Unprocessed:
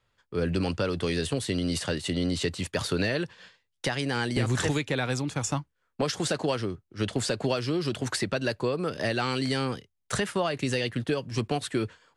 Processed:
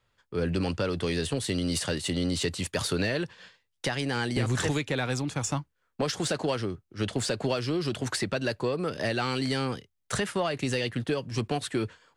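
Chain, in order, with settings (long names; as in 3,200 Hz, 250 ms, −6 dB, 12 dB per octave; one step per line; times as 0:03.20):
0:01.44–0:02.97: high-shelf EQ 6,100 Hz +6 dB
in parallel at −8 dB: soft clipping −28 dBFS, distortion −9 dB
on the sum: level −2.5 dB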